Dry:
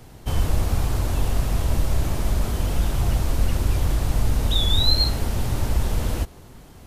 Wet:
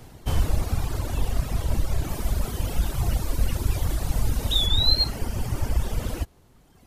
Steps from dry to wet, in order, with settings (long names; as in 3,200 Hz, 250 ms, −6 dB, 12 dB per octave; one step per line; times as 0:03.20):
0:02.08–0:04.66: high-shelf EQ 11,000 Hz → 5,600 Hz +5.5 dB
reverb reduction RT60 1.9 s